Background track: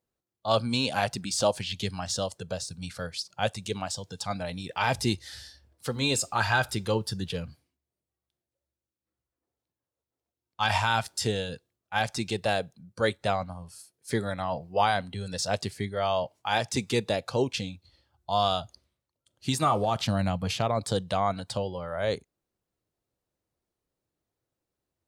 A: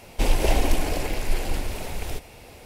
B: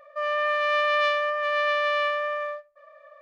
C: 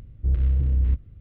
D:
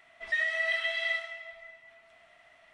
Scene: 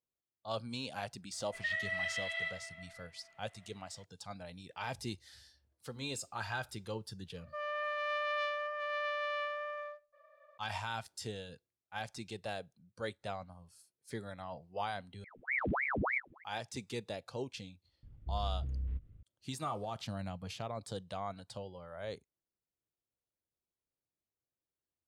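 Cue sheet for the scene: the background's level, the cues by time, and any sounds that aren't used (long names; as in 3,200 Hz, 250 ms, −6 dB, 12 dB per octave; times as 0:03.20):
background track −14 dB
0:01.32: mix in D −7 dB + parametric band 6,000 Hz −5 dB
0:07.37: mix in B −12.5 dB
0:15.24: overwrite with C −11.5 dB + ring modulator whose carrier an LFO sweeps 1,200 Hz, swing 90%, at 3.3 Hz
0:18.03: mix in C −11 dB + downward compressor 1.5 to 1, threshold −32 dBFS
not used: A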